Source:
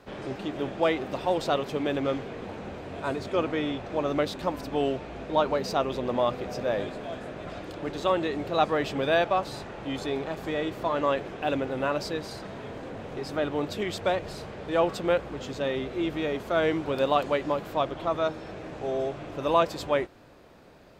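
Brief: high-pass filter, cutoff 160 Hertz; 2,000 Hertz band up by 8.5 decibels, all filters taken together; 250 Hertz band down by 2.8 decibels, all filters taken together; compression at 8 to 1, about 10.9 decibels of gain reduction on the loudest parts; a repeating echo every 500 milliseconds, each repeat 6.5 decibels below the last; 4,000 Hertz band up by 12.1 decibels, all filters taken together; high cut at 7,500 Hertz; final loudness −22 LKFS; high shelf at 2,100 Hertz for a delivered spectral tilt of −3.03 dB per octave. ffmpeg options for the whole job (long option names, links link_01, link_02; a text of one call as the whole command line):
ffmpeg -i in.wav -af "highpass=160,lowpass=7500,equalizer=frequency=250:width_type=o:gain=-3.5,equalizer=frequency=2000:width_type=o:gain=5,highshelf=frequency=2100:gain=7.5,equalizer=frequency=4000:width_type=o:gain=6.5,acompressor=threshold=-26dB:ratio=8,aecho=1:1:500|1000|1500|2000|2500|3000:0.473|0.222|0.105|0.0491|0.0231|0.0109,volume=8dB" out.wav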